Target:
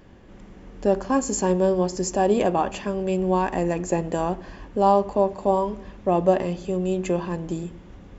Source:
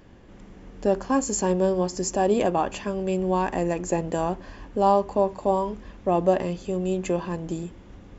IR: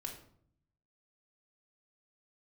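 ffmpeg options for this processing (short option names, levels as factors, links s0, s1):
-filter_complex "[0:a]asplit=2[s0][s1];[1:a]atrim=start_sample=2205,asetrate=27783,aresample=44100,lowpass=5200[s2];[s1][s2]afir=irnorm=-1:irlink=0,volume=0.188[s3];[s0][s3]amix=inputs=2:normalize=0"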